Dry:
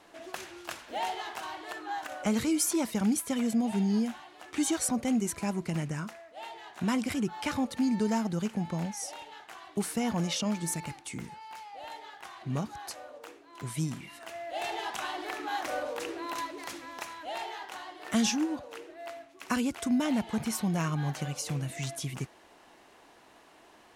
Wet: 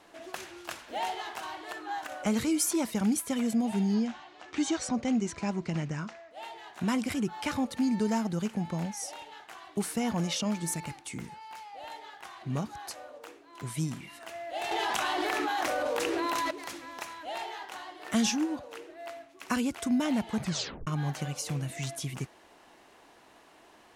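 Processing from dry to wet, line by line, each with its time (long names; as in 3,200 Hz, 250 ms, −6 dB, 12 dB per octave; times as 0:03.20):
0:03.94–0:06.31: low-pass filter 6,700 Hz 24 dB per octave
0:14.71–0:16.51: envelope flattener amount 100%
0:20.39: tape stop 0.48 s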